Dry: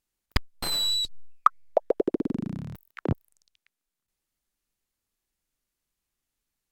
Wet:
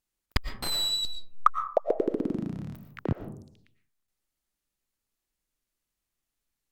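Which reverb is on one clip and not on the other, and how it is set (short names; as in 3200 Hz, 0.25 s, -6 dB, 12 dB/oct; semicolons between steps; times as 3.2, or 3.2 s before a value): digital reverb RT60 0.62 s, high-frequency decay 0.35×, pre-delay 75 ms, DRR 8.5 dB; gain -2 dB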